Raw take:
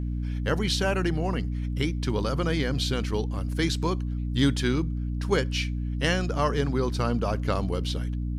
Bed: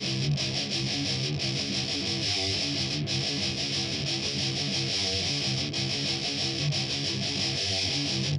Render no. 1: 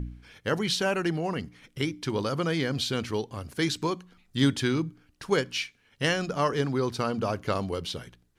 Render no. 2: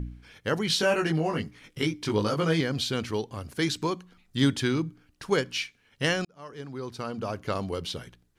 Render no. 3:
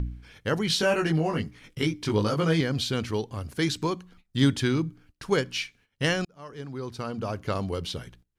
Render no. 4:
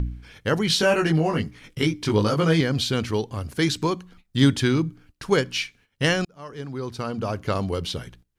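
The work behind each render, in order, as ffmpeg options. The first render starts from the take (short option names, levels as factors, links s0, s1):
-af "bandreject=f=60:t=h:w=4,bandreject=f=120:t=h:w=4,bandreject=f=180:t=h:w=4,bandreject=f=240:t=h:w=4,bandreject=f=300:t=h:w=4"
-filter_complex "[0:a]asettb=1/sr,asplit=3[s0][s1][s2];[s0]atrim=end=0.684[s3];[s1]atrim=start=0.68:end=2.61,asetpts=PTS-STARTPTS,afade=t=in:d=0.004:c=qsin,afade=t=out:st=1.926:d=0.004:c=qsin,asplit=2[s4][s5];[s5]adelay=19,volume=0.794[s6];[s4][s6]amix=inputs=2:normalize=0,atrim=end_sample=85113[s7];[s2]atrim=start=2.606[s8];[s3][s7]acrossfade=d=0.004:c1=hsin:c2=qsin[s9];[s9][s8]acrossfade=d=0.004:c1=qsin:c2=hsin,asplit=2[s10][s11];[s10]atrim=end=6.25,asetpts=PTS-STARTPTS,afade=t=out:st=6.246:d=0.004:c=hsin[s12];[s11]atrim=start=6.25,asetpts=PTS-STARTPTS,afade=t=in:d=1.58[s13];[s12][s13]concat=n=2:v=0:a=1"
-af "agate=range=0.158:threshold=0.00158:ratio=16:detection=peak,lowshelf=f=120:g=7"
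-af "volume=1.58"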